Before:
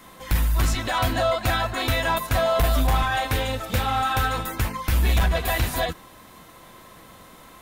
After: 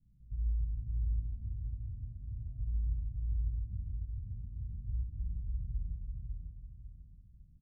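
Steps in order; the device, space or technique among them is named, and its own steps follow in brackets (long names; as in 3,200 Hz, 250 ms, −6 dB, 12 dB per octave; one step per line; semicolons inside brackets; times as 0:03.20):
club heard from the street (brickwall limiter −23 dBFS, peak gain reduction 10 dB; low-pass filter 130 Hz 24 dB per octave; convolution reverb RT60 1.0 s, pre-delay 47 ms, DRR 1 dB)
0:03.46–0:04.12: double-tracking delay 21 ms −8 dB
repeating echo 549 ms, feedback 36%, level −3 dB
level −8 dB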